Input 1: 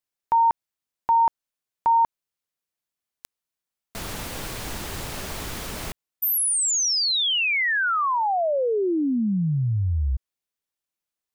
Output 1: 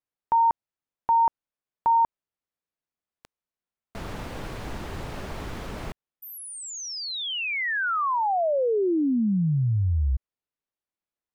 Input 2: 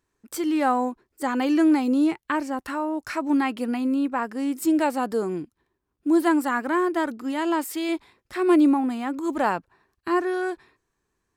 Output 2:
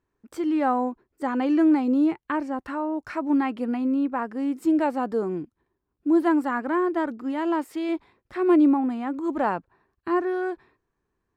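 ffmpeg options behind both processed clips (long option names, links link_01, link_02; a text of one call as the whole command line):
ffmpeg -i in.wav -af "lowpass=frequency=1400:poles=1" out.wav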